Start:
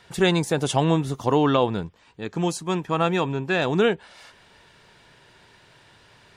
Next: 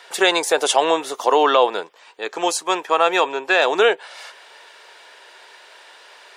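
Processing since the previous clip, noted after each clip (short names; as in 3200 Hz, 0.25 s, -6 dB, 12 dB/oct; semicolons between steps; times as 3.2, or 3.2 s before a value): HPF 460 Hz 24 dB/oct; in parallel at +2 dB: limiter -16 dBFS, peak gain reduction 8.5 dB; on the sum: gain +2.5 dB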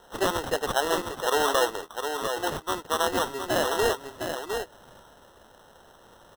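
echo 0.708 s -6.5 dB; sample-and-hold 19×; gain -9 dB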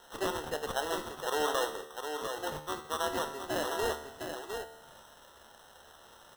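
resonator 75 Hz, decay 0.83 s, harmonics all, mix 70%; mismatched tape noise reduction encoder only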